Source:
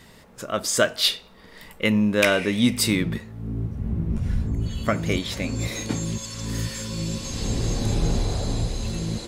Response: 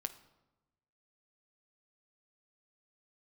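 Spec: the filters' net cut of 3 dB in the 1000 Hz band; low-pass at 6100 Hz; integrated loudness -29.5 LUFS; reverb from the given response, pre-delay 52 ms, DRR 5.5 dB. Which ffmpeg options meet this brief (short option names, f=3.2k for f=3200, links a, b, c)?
-filter_complex "[0:a]lowpass=6.1k,equalizer=f=1k:t=o:g=-4.5,asplit=2[a][b];[1:a]atrim=start_sample=2205,adelay=52[c];[b][c]afir=irnorm=-1:irlink=0,volume=-4dB[d];[a][d]amix=inputs=2:normalize=0,volume=-5dB"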